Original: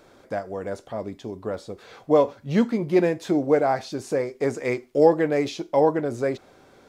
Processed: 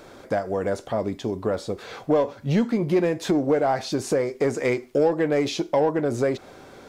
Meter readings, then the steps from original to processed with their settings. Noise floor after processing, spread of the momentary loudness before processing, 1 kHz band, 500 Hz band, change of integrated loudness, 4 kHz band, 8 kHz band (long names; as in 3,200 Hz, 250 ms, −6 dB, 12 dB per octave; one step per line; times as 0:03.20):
−47 dBFS, 14 LU, −1.0 dB, −0.5 dB, −0.5 dB, +5.0 dB, +5.5 dB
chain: in parallel at −5.5 dB: soft clipping −21.5 dBFS, distortion −7 dB
on the sum: downward compressor 2.5 to 1, threshold −25 dBFS, peak gain reduction 10.5 dB
level +4 dB